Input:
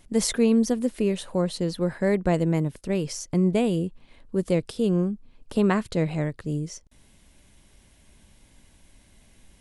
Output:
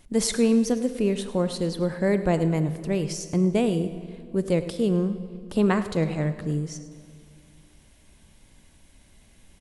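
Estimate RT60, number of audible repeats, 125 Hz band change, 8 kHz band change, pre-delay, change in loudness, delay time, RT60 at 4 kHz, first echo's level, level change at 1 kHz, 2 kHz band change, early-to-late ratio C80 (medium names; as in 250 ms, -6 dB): 2.2 s, 1, +0.5 dB, +0.5 dB, 20 ms, 0.0 dB, 105 ms, 1.6 s, -16.0 dB, +0.5 dB, +0.5 dB, 12.0 dB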